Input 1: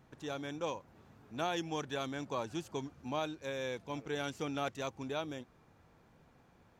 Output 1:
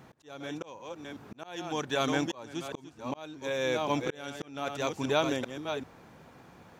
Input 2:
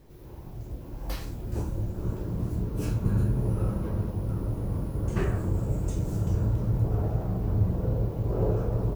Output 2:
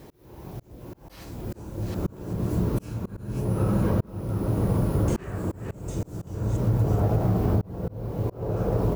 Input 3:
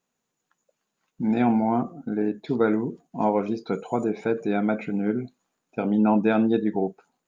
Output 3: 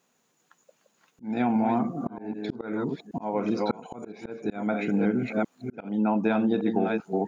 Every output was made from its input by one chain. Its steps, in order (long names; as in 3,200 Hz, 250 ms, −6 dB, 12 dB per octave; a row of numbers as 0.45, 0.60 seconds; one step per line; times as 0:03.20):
delay that plays each chunk backwards 389 ms, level −8 dB
high-pass filter 140 Hz 6 dB per octave
dynamic equaliser 380 Hz, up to −3 dB, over −35 dBFS, Q 2
volume swells 729 ms
downward compressor 12 to 1, threshold −30 dBFS
normalise the peak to −12 dBFS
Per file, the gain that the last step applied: +12.0, +12.0, +10.0 decibels